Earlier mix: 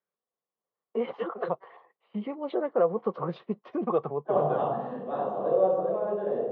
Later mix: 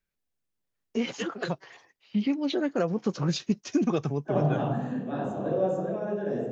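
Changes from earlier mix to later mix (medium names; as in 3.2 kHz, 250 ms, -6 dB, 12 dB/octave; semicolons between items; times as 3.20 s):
first voice: remove low-pass 2 kHz 12 dB/octave; master: remove cabinet simulation 260–3400 Hz, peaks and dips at 280 Hz -10 dB, 490 Hz +7 dB, 740 Hz +4 dB, 1.1 kHz +9 dB, 1.6 kHz -8 dB, 2.5 kHz -9 dB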